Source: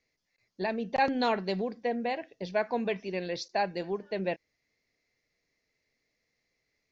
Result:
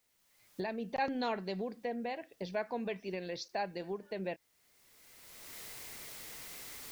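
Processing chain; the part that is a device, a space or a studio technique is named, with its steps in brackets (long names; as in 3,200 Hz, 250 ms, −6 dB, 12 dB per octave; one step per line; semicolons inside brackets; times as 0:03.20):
cheap recorder with automatic gain (white noise bed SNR 37 dB; camcorder AGC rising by 24 dB per second)
level −7.5 dB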